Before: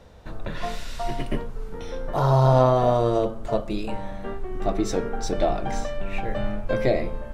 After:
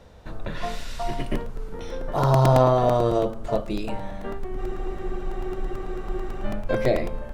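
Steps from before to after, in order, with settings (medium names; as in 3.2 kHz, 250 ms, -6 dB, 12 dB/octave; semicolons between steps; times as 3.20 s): spectral freeze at 4.60 s, 1.85 s; crackling interface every 0.11 s, samples 128, repeat, from 0.80 s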